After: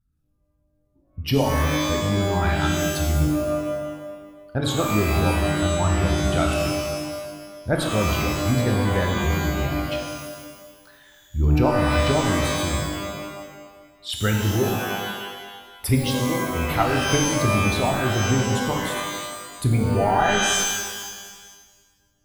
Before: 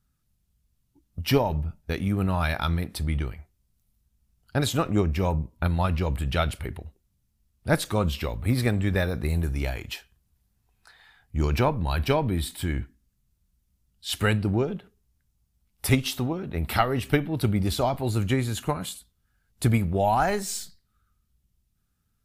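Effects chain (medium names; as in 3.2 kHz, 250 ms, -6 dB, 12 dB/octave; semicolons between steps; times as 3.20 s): resonances exaggerated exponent 1.5; de-hum 141 Hz, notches 35; pitch-shifted reverb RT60 1.4 s, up +12 st, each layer -2 dB, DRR 2 dB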